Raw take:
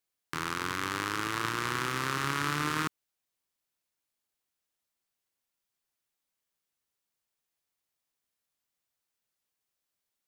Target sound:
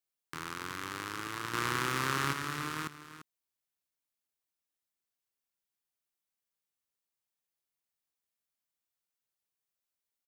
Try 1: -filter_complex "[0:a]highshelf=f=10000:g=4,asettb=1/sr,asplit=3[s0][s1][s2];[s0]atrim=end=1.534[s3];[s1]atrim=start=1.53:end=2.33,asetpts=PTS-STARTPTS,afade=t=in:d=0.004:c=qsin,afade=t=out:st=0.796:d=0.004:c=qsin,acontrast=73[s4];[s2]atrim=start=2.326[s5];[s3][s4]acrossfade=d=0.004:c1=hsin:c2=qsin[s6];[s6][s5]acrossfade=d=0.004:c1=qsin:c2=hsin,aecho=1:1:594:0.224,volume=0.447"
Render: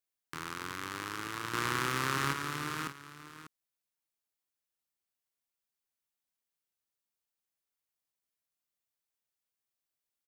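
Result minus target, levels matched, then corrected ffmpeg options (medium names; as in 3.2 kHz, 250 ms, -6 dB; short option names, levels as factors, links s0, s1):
echo 251 ms late
-filter_complex "[0:a]highshelf=f=10000:g=4,asettb=1/sr,asplit=3[s0][s1][s2];[s0]atrim=end=1.534[s3];[s1]atrim=start=1.53:end=2.33,asetpts=PTS-STARTPTS,afade=t=in:d=0.004:c=qsin,afade=t=out:st=0.796:d=0.004:c=qsin,acontrast=73[s4];[s2]atrim=start=2.326[s5];[s3][s4]acrossfade=d=0.004:c1=hsin:c2=qsin[s6];[s6][s5]acrossfade=d=0.004:c1=qsin:c2=hsin,aecho=1:1:343:0.224,volume=0.447"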